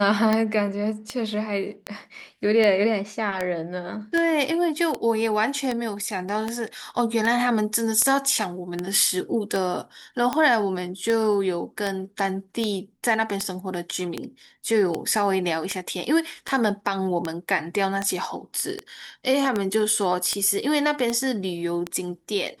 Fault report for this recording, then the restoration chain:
scratch tick 78 rpm −11 dBFS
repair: click removal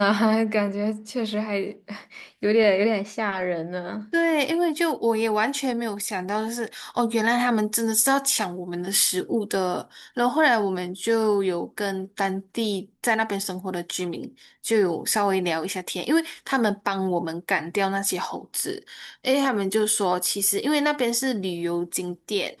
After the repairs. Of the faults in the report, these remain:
none of them is left

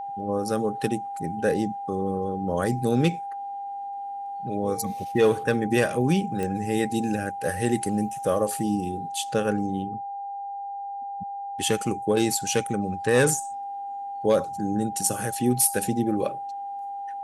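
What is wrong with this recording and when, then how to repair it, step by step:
whistle 800 Hz −31 dBFS
0:06.43: click −17 dBFS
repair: click removal
notch filter 800 Hz, Q 30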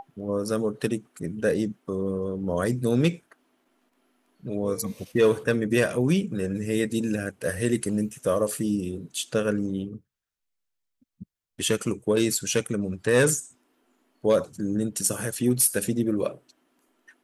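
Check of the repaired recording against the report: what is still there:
none of them is left

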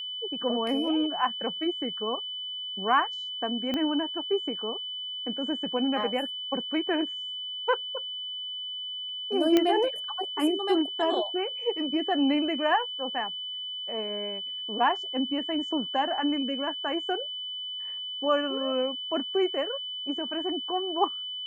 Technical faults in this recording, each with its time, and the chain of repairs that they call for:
whistle 3,000 Hz −33 dBFS
0:03.74: click −17 dBFS
0:09.57: click −9 dBFS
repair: click removal
notch filter 3,000 Hz, Q 30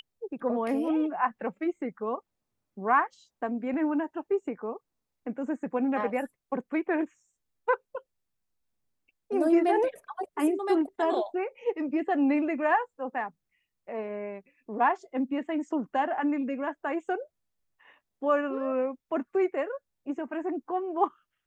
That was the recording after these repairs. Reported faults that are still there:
0:03.74: click

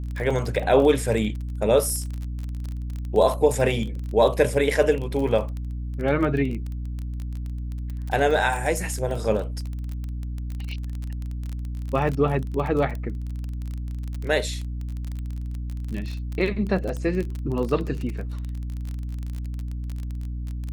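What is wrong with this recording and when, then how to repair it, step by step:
surface crackle 26 per second −28 dBFS
mains hum 60 Hz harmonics 5 −30 dBFS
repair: click removal
hum removal 60 Hz, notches 5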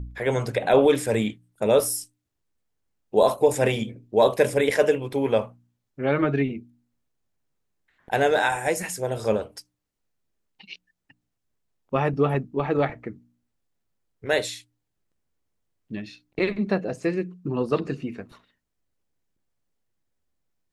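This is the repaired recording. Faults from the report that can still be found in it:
none of them is left

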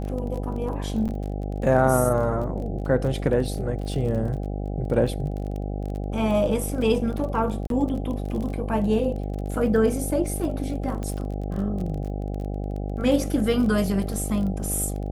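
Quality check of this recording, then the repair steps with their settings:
mains buzz 50 Hz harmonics 16 −29 dBFS
surface crackle 26 per second −31 dBFS
0:01.08–0:01.09: drop-out 8.8 ms
0:07.67–0:07.70: drop-out 32 ms
0:11.03: click −20 dBFS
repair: click removal
hum removal 50 Hz, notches 16
repair the gap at 0:01.08, 8.8 ms
repair the gap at 0:07.67, 32 ms

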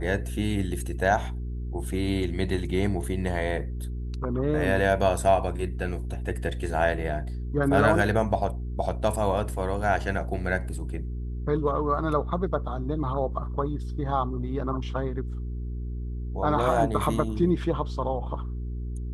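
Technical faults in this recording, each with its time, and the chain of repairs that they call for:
mains hum 60 Hz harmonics 7 −32 dBFS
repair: hum removal 60 Hz, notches 7

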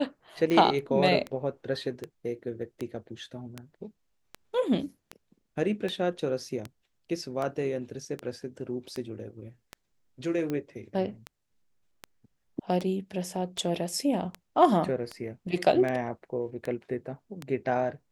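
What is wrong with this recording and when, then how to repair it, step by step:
scratch tick 78 rpm −20 dBFS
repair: click removal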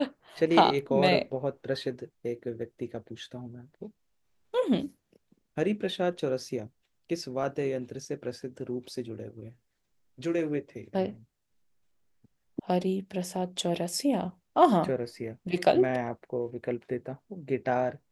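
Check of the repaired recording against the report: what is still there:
none of them is left

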